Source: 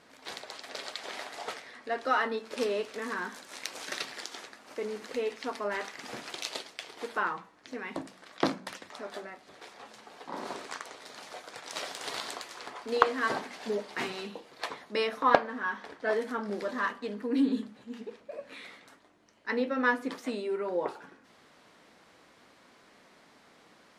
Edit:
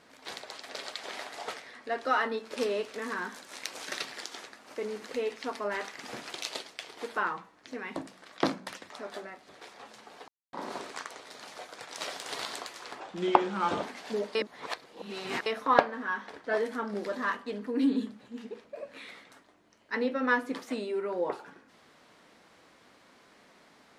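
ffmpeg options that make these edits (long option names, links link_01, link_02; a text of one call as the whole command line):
ffmpeg -i in.wav -filter_complex "[0:a]asplit=6[link_01][link_02][link_03][link_04][link_05][link_06];[link_01]atrim=end=10.28,asetpts=PTS-STARTPTS,afade=type=out:start_time=10.276:duration=0.004:curve=hsin,apad=pad_dur=0.25[link_07];[link_02]atrim=start=10.28:end=12.754,asetpts=PTS-STARTPTS,afade=type=in:duration=0.004:curve=hsin[link_08];[link_03]atrim=start=12.75:end=13.39,asetpts=PTS-STARTPTS,asetrate=33957,aresample=44100[link_09];[link_04]atrim=start=13.386:end=13.912[link_10];[link_05]atrim=start=13.908:end=15.022,asetpts=PTS-STARTPTS,areverse[link_11];[link_06]atrim=start=15.018[link_12];[link_07][link_08]concat=n=2:v=0:a=1[link_13];[link_13][link_09]acrossfade=duration=0.004:curve1=hsin:curve2=hsin[link_14];[link_14][link_10]acrossfade=duration=0.004:curve1=hsin:curve2=hsin[link_15];[link_15][link_11]acrossfade=duration=0.004:curve1=hsin:curve2=hsin[link_16];[link_16][link_12]acrossfade=duration=0.004:curve1=hsin:curve2=hsin" out.wav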